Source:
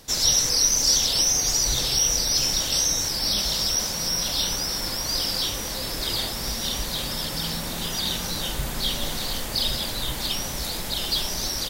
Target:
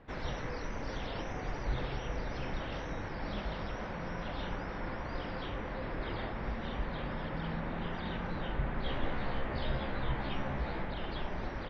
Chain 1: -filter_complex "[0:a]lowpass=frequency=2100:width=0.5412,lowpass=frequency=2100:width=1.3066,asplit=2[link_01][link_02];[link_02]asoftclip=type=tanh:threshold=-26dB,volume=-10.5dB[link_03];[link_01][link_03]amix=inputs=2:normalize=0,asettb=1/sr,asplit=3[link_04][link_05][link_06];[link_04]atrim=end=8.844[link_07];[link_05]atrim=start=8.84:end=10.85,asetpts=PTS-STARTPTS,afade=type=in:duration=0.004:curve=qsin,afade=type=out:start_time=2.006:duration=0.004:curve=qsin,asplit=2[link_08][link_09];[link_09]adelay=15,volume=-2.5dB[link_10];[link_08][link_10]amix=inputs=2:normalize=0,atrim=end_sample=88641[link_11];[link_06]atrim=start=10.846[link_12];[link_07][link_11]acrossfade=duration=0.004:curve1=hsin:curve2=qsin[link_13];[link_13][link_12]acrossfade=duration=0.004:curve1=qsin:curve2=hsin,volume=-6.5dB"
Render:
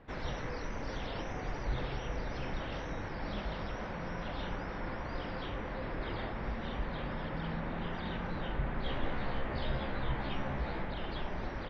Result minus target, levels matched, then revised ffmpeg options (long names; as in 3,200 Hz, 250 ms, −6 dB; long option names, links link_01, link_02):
soft clipping: distortion +16 dB
-filter_complex "[0:a]lowpass=frequency=2100:width=0.5412,lowpass=frequency=2100:width=1.3066,asplit=2[link_01][link_02];[link_02]asoftclip=type=tanh:threshold=-15.5dB,volume=-10.5dB[link_03];[link_01][link_03]amix=inputs=2:normalize=0,asettb=1/sr,asplit=3[link_04][link_05][link_06];[link_04]atrim=end=8.844[link_07];[link_05]atrim=start=8.84:end=10.85,asetpts=PTS-STARTPTS,afade=type=in:duration=0.004:curve=qsin,afade=type=out:start_time=2.006:duration=0.004:curve=qsin,asplit=2[link_08][link_09];[link_09]adelay=15,volume=-2.5dB[link_10];[link_08][link_10]amix=inputs=2:normalize=0,atrim=end_sample=88641[link_11];[link_06]atrim=start=10.846[link_12];[link_07][link_11]acrossfade=duration=0.004:curve1=hsin:curve2=qsin[link_13];[link_13][link_12]acrossfade=duration=0.004:curve1=qsin:curve2=hsin,volume=-6.5dB"